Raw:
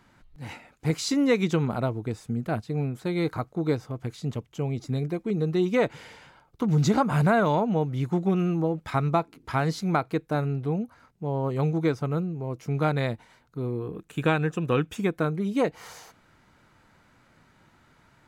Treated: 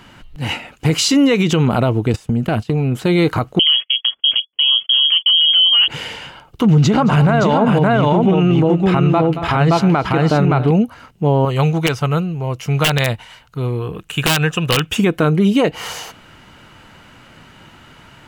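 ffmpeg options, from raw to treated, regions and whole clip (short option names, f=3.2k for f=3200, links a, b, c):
-filter_complex "[0:a]asettb=1/sr,asplit=3[a][b][c];[a]atrim=end=2.134[d];[b]atrim=start=2.13:end=2.92,asetpts=PTS-STARTPTS,afade=t=in:d=0.004:c=qsin,afade=t=out:st=0.786:d=0.004:c=qsin,agate=range=-20dB:threshold=-40dB:ratio=16:release=100:detection=peak,acompressor=threshold=-37dB:ratio=8:attack=3.2:release=140:knee=1:detection=peak,aeval=exprs='0.0596*sin(PI/2*1.78*val(0)/0.0596)':c=same[e];[c]atrim=start=2.916[f];[d][e]acrossfade=d=0.004:c1=hsin:c2=qsin[g];[g][f]acrossfade=d=0.004:c1=qsin:c2=hsin,asettb=1/sr,asplit=3[h][i][j];[h]atrim=end=3.594[k];[i]atrim=start=3.59:end=5.88,asetpts=PTS-STARTPTS,afade=t=in:d=0.004:c=qsin,afade=t=out:st=2.286:d=0.004:c=qsin,agate=range=-41dB:threshold=-42dB:ratio=16:release=100:detection=peak,lowpass=f=2.9k:t=q:w=0.5098,lowpass=f=2.9k:t=q:w=0.6013,lowpass=f=2.9k:t=q:w=0.9,lowpass=f=2.9k:t=q:w=2.563,afreqshift=-3400[l];[j]atrim=start=5.876[m];[k][l]acrossfade=d=0.004:c1=hsin:c2=qsin[n];[n][m]acrossfade=d=0.004:c1=qsin:c2=hsin,asettb=1/sr,asplit=3[o][p][q];[o]atrim=end=6.704[r];[p]atrim=start=6.7:end=10.71,asetpts=PTS-STARTPTS,afade=t=in:d=0.004:c=qsin,afade=t=out:st=4.006:d=0.004:c=qsin,lowpass=f=3.2k:p=1,aecho=1:1:224|278|570:0.1|0.112|0.708,atrim=end_sample=176841[s];[q]atrim=start=10.706[t];[r][s]acrossfade=d=0.004:c1=hsin:c2=qsin[u];[u][t]acrossfade=d=0.004:c1=qsin:c2=hsin,asettb=1/sr,asplit=3[v][w][x];[v]atrim=end=11.454[y];[w]atrim=start=11.45:end=14.92,asetpts=PTS-STARTPTS,afade=t=in:d=0.004:c=qsin,afade=t=out:st=3.466:d=0.004:c=qsin,equalizer=f=290:w=0.77:g=-11,aeval=exprs='(mod(10.6*val(0)+1,2)-1)/10.6':c=same[z];[x]atrim=start=14.916[aa];[y][z]acrossfade=d=0.004:c1=hsin:c2=qsin[ab];[ab][aa]acrossfade=d=0.004:c1=qsin:c2=hsin,equalizer=f=2.9k:t=o:w=0.26:g=11.5,alimiter=level_in=20.5dB:limit=-1dB:release=50:level=0:latency=1,volume=-5dB"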